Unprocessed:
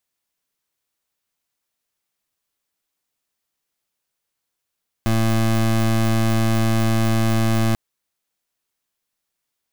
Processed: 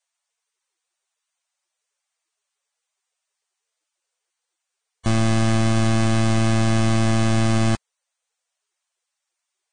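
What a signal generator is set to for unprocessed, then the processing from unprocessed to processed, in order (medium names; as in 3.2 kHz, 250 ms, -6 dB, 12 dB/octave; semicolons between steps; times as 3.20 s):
pulse 112 Hz, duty 24% -17.5 dBFS 2.69 s
Vorbis 16 kbps 22.05 kHz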